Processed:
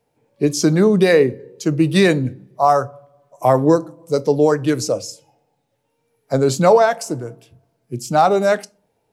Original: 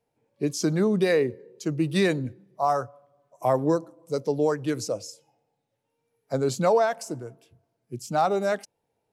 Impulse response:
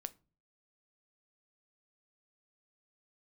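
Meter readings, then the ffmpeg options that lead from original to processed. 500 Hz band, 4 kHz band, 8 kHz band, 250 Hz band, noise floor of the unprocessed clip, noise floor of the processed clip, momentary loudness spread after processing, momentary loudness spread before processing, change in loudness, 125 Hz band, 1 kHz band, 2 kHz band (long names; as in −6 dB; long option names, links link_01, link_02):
+9.0 dB, +9.0 dB, +9.0 dB, +9.0 dB, −78 dBFS, −69 dBFS, 14 LU, 14 LU, +9.0 dB, +9.5 dB, +9.0 dB, +9.0 dB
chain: -filter_complex "[0:a]asplit=2[link_01][link_02];[1:a]atrim=start_sample=2205[link_03];[link_02][link_03]afir=irnorm=-1:irlink=0,volume=10dB[link_04];[link_01][link_04]amix=inputs=2:normalize=0,volume=-1dB"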